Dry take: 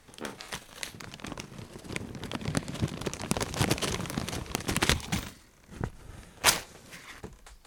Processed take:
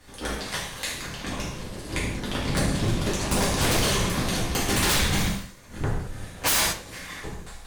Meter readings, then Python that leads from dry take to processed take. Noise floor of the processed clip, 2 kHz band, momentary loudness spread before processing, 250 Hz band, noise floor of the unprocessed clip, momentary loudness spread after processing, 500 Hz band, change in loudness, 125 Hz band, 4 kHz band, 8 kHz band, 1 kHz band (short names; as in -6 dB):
-44 dBFS, +6.0 dB, 20 LU, +6.5 dB, -57 dBFS, 14 LU, +7.0 dB, +6.0 dB, +7.0 dB, +6.0 dB, +6.5 dB, +6.0 dB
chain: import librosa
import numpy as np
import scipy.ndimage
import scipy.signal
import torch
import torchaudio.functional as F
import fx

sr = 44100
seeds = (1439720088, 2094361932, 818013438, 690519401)

y = fx.octave_divider(x, sr, octaves=2, level_db=1.0)
y = fx.rev_gated(y, sr, seeds[0], gate_ms=250, shape='falling', drr_db=-8.0)
y = 10.0 ** (-16.5 / 20.0) * (np.abs((y / 10.0 ** (-16.5 / 20.0) + 3.0) % 4.0 - 2.0) - 1.0)